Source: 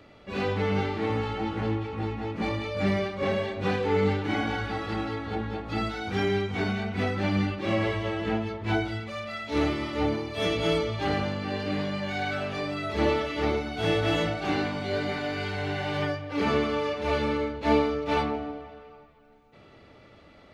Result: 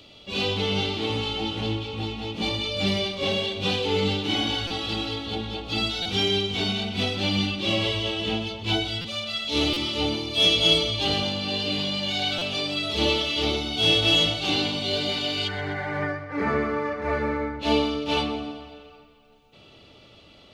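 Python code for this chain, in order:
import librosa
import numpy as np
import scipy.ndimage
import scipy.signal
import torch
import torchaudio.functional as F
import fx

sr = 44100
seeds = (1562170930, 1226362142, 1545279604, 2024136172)

y = fx.high_shelf_res(x, sr, hz=2400.0, db=fx.steps((0.0, 9.5), (15.47, -7.0), (17.59, 6.5)), q=3.0)
y = fx.echo_feedback(y, sr, ms=126, feedback_pct=57, wet_db=-14.5)
y = fx.buffer_glitch(y, sr, at_s=(4.67, 6.02, 9.01, 9.73, 12.38), block=256, repeats=5)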